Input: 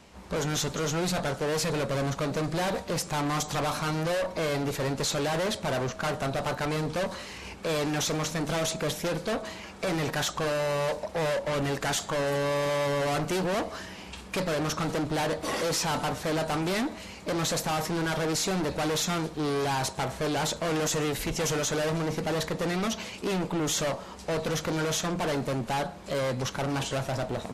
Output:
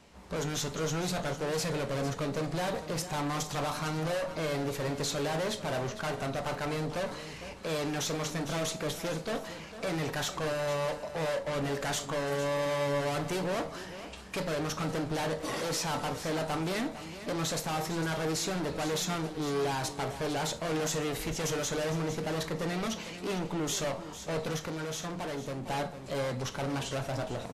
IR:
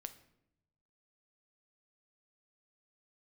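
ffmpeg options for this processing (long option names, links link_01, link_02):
-filter_complex "[0:a]aecho=1:1:453:0.237[link_01];[1:a]atrim=start_sample=2205,atrim=end_sample=3528[link_02];[link_01][link_02]afir=irnorm=-1:irlink=0,asettb=1/sr,asplit=3[link_03][link_04][link_05];[link_03]atrim=end=24.564[link_06];[link_04]atrim=start=24.56:end=25.67,asetpts=PTS-STARTPTS,afade=type=in:duration=0.004:curve=qsin,afade=type=out:start_time=1.106:duration=0.004:curve=qsin,acompressor=threshold=-34dB:ratio=6[link_07];[link_05]atrim=start=25.666[link_08];[link_06][link_07]acrossfade=duration=0.004:curve1=hsin:curve2=qsin[link_09];[link_09][link_08]acrossfade=duration=0.004:curve1=qsin:curve2=hsin"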